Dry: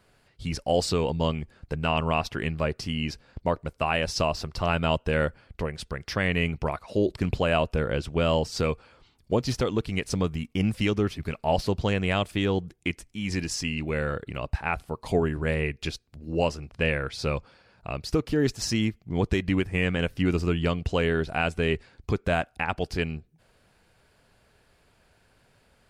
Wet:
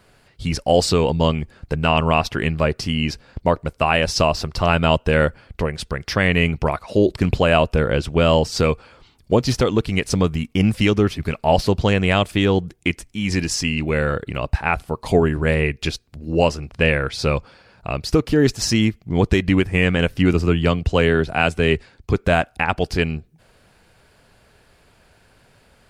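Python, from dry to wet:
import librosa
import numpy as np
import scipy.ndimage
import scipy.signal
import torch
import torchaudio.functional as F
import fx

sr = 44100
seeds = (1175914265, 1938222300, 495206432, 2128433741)

y = fx.band_widen(x, sr, depth_pct=40, at=(20.33, 22.14))
y = F.gain(torch.from_numpy(y), 8.0).numpy()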